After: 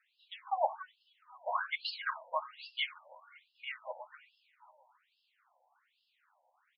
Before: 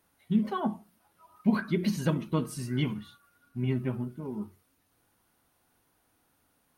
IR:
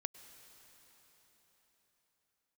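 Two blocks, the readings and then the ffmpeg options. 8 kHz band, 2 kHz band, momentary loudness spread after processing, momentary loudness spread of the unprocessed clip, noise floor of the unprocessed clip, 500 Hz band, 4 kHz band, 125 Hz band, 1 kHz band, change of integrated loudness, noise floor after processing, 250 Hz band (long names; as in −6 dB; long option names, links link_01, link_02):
below −30 dB, +2.0 dB, 18 LU, 12 LU, −72 dBFS, −6.0 dB, +3.5 dB, below −40 dB, +3.5 dB, −7.0 dB, −79 dBFS, below −40 dB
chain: -filter_complex "[0:a]asplit=2[link_01][link_02];[link_02]adelay=267,lowpass=frequency=3200:poles=1,volume=-9dB,asplit=2[link_03][link_04];[link_04]adelay=267,lowpass=frequency=3200:poles=1,volume=0.31,asplit=2[link_05][link_06];[link_06]adelay=267,lowpass=frequency=3200:poles=1,volume=0.31,asplit=2[link_07][link_08];[link_08]adelay=267,lowpass=frequency=3200:poles=1,volume=0.31[link_09];[link_03][link_05][link_07][link_09]amix=inputs=4:normalize=0[link_10];[link_01][link_10]amix=inputs=2:normalize=0,afftfilt=real='re*between(b*sr/1024,690*pow(3800/690,0.5+0.5*sin(2*PI*1.2*pts/sr))/1.41,690*pow(3800/690,0.5+0.5*sin(2*PI*1.2*pts/sr))*1.41)':imag='im*between(b*sr/1024,690*pow(3800/690,0.5+0.5*sin(2*PI*1.2*pts/sr))/1.41,690*pow(3800/690,0.5+0.5*sin(2*PI*1.2*pts/sr))*1.41)':win_size=1024:overlap=0.75,volume=5.5dB"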